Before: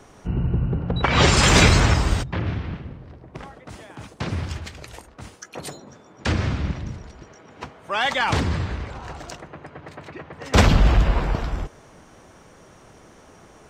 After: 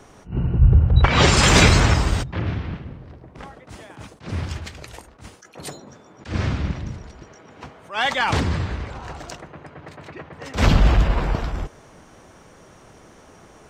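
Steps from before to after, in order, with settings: 0.59–1.07 resonant low shelf 130 Hz +12.5 dB, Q 1.5; attack slew limiter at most 200 dB/s; gain +1 dB

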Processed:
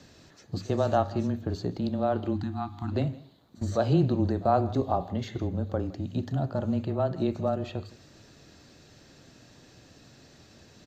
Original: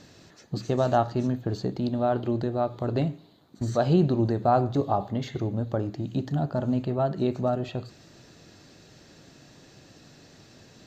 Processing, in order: spectral delete 2.34–2.95, 360–730 Hz; pre-echo 45 ms -23 dB; frequency shift -18 Hz; on a send: echo 0.163 s -20.5 dB; on the sum: gain -2 dB

